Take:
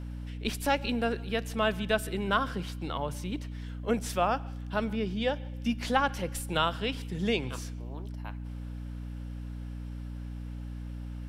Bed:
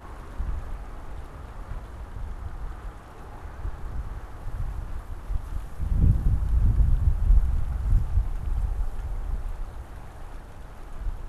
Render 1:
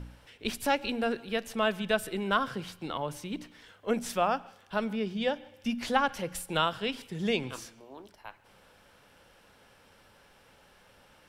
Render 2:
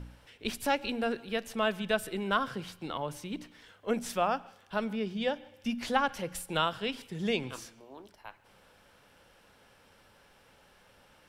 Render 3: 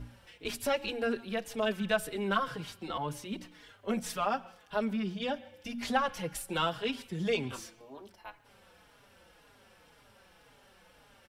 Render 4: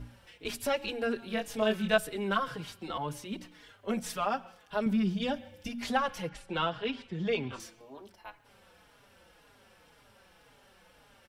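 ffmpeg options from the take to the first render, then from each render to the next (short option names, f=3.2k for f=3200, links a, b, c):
-af "bandreject=f=60:t=h:w=4,bandreject=f=120:t=h:w=4,bandreject=f=180:t=h:w=4,bandreject=f=240:t=h:w=4,bandreject=f=300:t=h:w=4"
-af "volume=-1.5dB"
-filter_complex "[0:a]asplit=2[a][b];[b]asoftclip=type=tanh:threshold=-27dB,volume=-6dB[c];[a][c]amix=inputs=2:normalize=0,asplit=2[d][e];[e]adelay=4.4,afreqshift=-1.9[f];[d][f]amix=inputs=2:normalize=1"
-filter_complex "[0:a]asettb=1/sr,asplit=3[a][b][c];[a]atrim=end=1.204[d];[b]atrim=start=1.2:end=1.98,asetpts=PTS-STARTPTS,afade=t=in:d=0.004:c=qsin,afade=t=out:st=0.776:d=0.004:c=qsin,asplit=2[e][f];[f]adelay=23,volume=-2.5dB[g];[e][g]amix=inputs=2:normalize=0,atrim=end_sample=34398[h];[c]atrim=start=1.976[i];[d][h]acrossfade=d=0.004:c1=hsin:c2=qsin[j];[j][i]acrossfade=d=0.004:c1=qsin:c2=hsin,asettb=1/sr,asplit=3[k][l][m];[k]atrim=end=4.864[n];[l]atrim=start=4.86:end=5.69,asetpts=PTS-STARTPTS,afade=t=in:d=0.004:c=qsin,afade=t=out:st=0.826:d=0.004:c=qsin,bass=f=250:g=9,treble=f=4k:g=4[o];[m]atrim=start=5.686[p];[n][o]acrossfade=d=0.004:c1=hsin:c2=qsin[q];[q][p]acrossfade=d=0.004:c1=qsin:c2=hsin,asettb=1/sr,asplit=3[r][s][t];[r]atrim=end=6.294[u];[s]atrim=start=6.29:end=7.6,asetpts=PTS-STARTPTS,afade=t=in:d=0.004:c=qsin,afade=t=out:st=1.306:d=0.004:c=qsin,lowpass=3.8k[v];[t]atrim=start=7.596[w];[u][v]acrossfade=d=0.004:c1=hsin:c2=qsin[x];[x][w]acrossfade=d=0.004:c1=qsin:c2=hsin"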